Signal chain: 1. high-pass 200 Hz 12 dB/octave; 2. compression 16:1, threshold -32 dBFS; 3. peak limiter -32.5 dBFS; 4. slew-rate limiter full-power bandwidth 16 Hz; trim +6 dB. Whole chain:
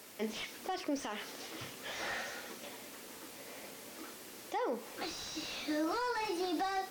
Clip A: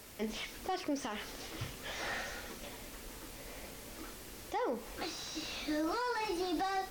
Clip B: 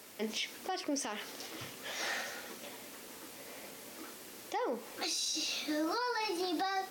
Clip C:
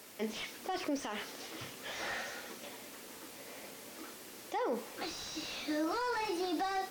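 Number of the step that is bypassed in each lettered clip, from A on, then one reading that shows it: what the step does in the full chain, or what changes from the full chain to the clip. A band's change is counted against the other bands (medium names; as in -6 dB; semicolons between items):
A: 1, 125 Hz band +7.0 dB; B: 4, distortion -7 dB; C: 2, mean gain reduction 2.0 dB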